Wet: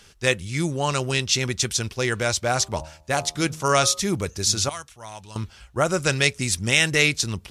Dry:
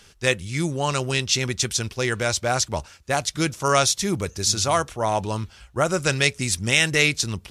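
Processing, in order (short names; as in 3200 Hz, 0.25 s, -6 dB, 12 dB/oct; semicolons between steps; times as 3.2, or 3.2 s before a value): 2.52–4 de-hum 78.29 Hz, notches 16; 4.69–5.36 passive tone stack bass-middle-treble 5-5-5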